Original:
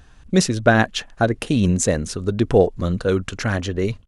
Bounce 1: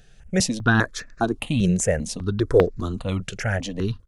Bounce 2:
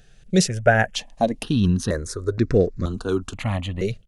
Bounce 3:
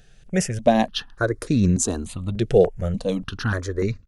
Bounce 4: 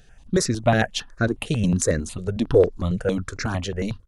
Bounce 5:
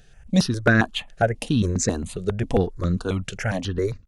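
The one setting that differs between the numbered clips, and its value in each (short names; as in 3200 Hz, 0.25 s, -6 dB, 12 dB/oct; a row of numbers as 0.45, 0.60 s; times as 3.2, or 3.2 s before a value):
step phaser, rate: 5, 2.1, 3.4, 11, 7.4 Hz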